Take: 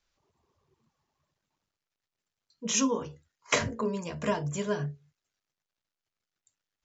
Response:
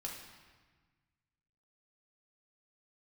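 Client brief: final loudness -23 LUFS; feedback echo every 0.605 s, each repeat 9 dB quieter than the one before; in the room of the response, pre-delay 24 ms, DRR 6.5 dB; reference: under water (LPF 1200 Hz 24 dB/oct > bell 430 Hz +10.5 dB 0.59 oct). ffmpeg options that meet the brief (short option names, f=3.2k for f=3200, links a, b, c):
-filter_complex "[0:a]aecho=1:1:605|1210|1815|2420:0.355|0.124|0.0435|0.0152,asplit=2[a][b];[1:a]atrim=start_sample=2205,adelay=24[c];[b][c]afir=irnorm=-1:irlink=0,volume=-5.5dB[d];[a][d]amix=inputs=2:normalize=0,lowpass=f=1.2k:w=0.5412,lowpass=f=1.2k:w=1.3066,equalizer=f=430:t=o:w=0.59:g=10.5,volume=4.5dB"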